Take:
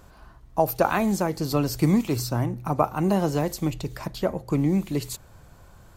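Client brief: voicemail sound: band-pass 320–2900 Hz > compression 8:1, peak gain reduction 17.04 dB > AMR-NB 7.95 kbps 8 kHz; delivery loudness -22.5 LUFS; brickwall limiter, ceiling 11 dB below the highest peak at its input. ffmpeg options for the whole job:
-af "alimiter=limit=0.158:level=0:latency=1,highpass=320,lowpass=2900,acompressor=threshold=0.01:ratio=8,volume=14.1" -ar 8000 -c:a libopencore_amrnb -b:a 7950

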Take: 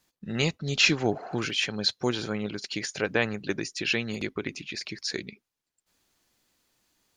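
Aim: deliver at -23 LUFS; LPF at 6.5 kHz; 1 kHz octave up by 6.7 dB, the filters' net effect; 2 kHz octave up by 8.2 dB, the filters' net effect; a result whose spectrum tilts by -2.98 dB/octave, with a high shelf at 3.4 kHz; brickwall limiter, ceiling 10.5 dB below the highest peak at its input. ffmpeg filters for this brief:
-af "lowpass=6500,equalizer=f=1000:t=o:g=7,equalizer=f=2000:t=o:g=6.5,highshelf=f=3400:g=7.5,volume=1.33,alimiter=limit=0.376:level=0:latency=1"

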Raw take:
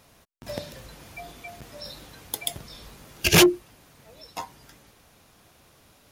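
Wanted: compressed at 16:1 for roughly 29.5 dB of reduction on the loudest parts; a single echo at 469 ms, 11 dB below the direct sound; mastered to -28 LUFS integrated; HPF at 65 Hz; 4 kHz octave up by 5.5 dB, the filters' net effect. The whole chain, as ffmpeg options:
-af "highpass=65,equalizer=f=4000:t=o:g=7.5,acompressor=threshold=0.0112:ratio=16,aecho=1:1:469:0.282,volume=6.68"

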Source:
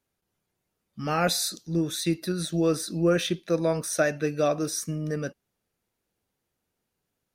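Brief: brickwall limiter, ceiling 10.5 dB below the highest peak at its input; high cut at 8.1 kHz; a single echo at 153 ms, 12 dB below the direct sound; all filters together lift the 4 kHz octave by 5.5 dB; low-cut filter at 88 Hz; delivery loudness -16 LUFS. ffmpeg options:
-af "highpass=88,lowpass=8100,equalizer=f=4000:t=o:g=6.5,alimiter=limit=0.0944:level=0:latency=1,aecho=1:1:153:0.251,volume=5.01"

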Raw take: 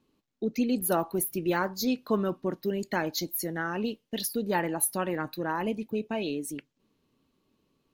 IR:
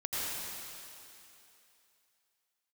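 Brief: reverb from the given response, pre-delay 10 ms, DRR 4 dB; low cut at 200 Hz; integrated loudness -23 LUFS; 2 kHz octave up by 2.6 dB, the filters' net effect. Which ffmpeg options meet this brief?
-filter_complex "[0:a]highpass=200,equalizer=f=2000:t=o:g=3.5,asplit=2[s0][s1];[1:a]atrim=start_sample=2205,adelay=10[s2];[s1][s2]afir=irnorm=-1:irlink=0,volume=0.316[s3];[s0][s3]amix=inputs=2:normalize=0,volume=2"

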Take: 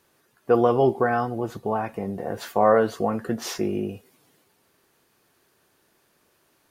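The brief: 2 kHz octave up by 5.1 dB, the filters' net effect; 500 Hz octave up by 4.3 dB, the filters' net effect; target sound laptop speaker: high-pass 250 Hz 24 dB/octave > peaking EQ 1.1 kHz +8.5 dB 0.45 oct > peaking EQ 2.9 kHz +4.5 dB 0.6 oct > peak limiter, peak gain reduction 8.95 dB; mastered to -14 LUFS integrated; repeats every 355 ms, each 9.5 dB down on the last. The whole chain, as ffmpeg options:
-af "highpass=f=250:w=0.5412,highpass=f=250:w=1.3066,equalizer=f=500:t=o:g=4.5,equalizer=f=1100:t=o:w=0.45:g=8.5,equalizer=f=2000:t=o:g=4,equalizer=f=2900:t=o:w=0.6:g=4.5,aecho=1:1:355|710|1065|1420:0.335|0.111|0.0365|0.012,volume=2.99,alimiter=limit=0.794:level=0:latency=1"

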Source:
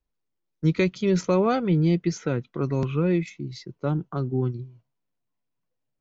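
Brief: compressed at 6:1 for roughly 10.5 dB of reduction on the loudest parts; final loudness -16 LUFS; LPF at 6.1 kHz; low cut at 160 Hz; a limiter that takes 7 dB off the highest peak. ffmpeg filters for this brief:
-af "highpass=160,lowpass=6100,acompressor=threshold=0.0355:ratio=6,volume=10.6,alimiter=limit=0.531:level=0:latency=1"

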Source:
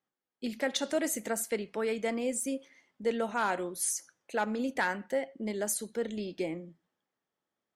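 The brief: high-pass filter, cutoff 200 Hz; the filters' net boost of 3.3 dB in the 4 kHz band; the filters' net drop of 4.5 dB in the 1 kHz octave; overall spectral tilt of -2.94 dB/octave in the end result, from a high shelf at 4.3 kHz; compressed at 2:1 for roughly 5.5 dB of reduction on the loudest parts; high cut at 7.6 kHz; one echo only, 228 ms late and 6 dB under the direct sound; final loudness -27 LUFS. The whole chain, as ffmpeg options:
-af "highpass=200,lowpass=7600,equalizer=f=1000:t=o:g=-6,equalizer=f=4000:t=o:g=8.5,highshelf=f=4300:g=-8,acompressor=threshold=0.0178:ratio=2,aecho=1:1:228:0.501,volume=3.55"

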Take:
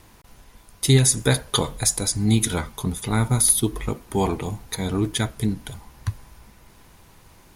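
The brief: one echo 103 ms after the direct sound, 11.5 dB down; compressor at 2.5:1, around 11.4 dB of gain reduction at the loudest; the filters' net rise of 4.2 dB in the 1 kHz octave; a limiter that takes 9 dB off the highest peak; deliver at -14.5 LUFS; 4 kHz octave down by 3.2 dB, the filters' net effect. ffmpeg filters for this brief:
-af "equalizer=f=1000:t=o:g=5.5,equalizer=f=4000:t=o:g=-4,acompressor=threshold=0.0316:ratio=2.5,alimiter=limit=0.0794:level=0:latency=1,aecho=1:1:103:0.266,volume=8.91"

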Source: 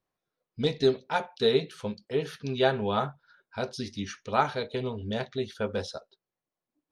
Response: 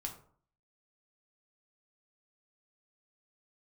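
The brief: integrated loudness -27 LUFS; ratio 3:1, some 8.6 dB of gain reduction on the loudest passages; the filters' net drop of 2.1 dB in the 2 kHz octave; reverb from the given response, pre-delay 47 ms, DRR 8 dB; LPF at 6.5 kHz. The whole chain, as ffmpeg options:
-filter_complex "[0:a]lowpass=6500,equalizer=f=2000:t=o:g=-3,acompressor=threshold=0.0316:ratio=3,asplit=2[s0][s1];[1:a]atrim=start_sample=2205,adelay=47[s2];[s1][s2]afir=irnorm=-1:irlink=0,volume=0.473[s3];[s0][s3]amix=inputs=2:normalize=0,volume=2.51"

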